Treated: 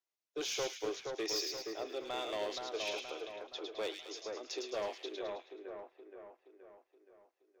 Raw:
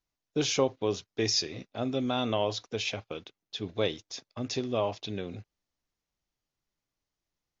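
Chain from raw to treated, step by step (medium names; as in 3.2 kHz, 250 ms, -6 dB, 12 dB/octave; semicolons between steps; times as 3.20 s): elliptic high-pass 330 Hz, stop band 40 dB; hard clipper -26.5 dBFS, distortion -11 dB; on a send: two-band feedback delay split 1.9 kHz, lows 473 ms, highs 107 ms, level -4 dB; on the sum: trim -6.5 dB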